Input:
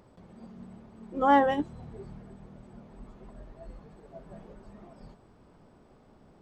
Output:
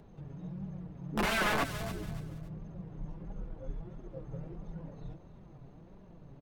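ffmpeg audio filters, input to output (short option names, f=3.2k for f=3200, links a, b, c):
-filter_complex "[0:a]bass=f=250:g=6,treble=f=4k:g=-4,asplit=2[a][b];[b]adelay=507.3,volume=-27dB,highshelf=f=4k:g=-11.4[c];[a][c]amix=inputs=2:normalize=0,acrossover=split=100|1700[d][e][f];[e]aeval=exprs='(mod(16.8*val(0)+1,2)-1)/16.8':c=same[g];[d][g][f]amix=inputs=3:normalize=0,asetrate=35002,aresample=44100,atempo=1.25992,flanger=delay=4.7:depth=2.7:regen=34:speed=1.5:shape=triangular,asplit=2[h][i];[i]aecho=0:1:283|566|849:0.188|0.0584|0.0181[j];[h][j]amix=inputs=2:normalize=0,acrossover=split=3000[k][l];[l]acompressor=threshold=-45dB:ratio=4:attack=1:release=60[m];[k][m]amix=inputs=2:normalize=0,volume=5dB"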